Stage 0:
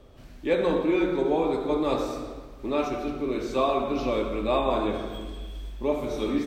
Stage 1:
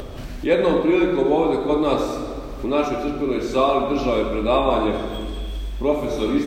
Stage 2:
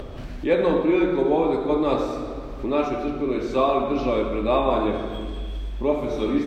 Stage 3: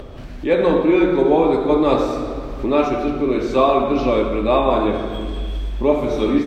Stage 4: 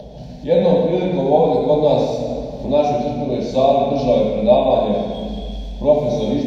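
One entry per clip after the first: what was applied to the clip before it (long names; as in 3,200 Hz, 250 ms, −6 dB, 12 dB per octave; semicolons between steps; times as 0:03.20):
upward compression, threshold −28 dBFS; level +6 dB
high-shelf EQ 5,700 Hz −12 dB; level −2 dB
automatic gain control gain up to 6.5 dB
phaser with its sweep stopped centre 330 Hz, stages 6; convolution reverb RT60 1.0 s, pre-delay 3 ms, DRR 1.5 dB; level −2 dB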